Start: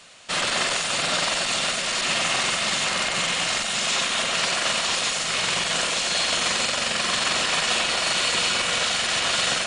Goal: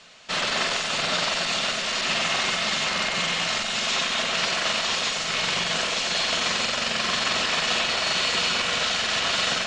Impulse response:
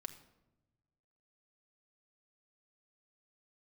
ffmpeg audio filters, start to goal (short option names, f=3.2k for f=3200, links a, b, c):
-filter_complex "[0:a]lowpass=f=6.6k:w=0.5412,lowpass=f=6.6k:w=1.3066,asplit=2[a][b];[1:a]atrim=start_sample=2205[c];[b][c]afir=irnorm=-1:irlink=0,volume=5.5dB[d];[a][d]amix=inputs=2:normalize=0,volume=-7.5dB"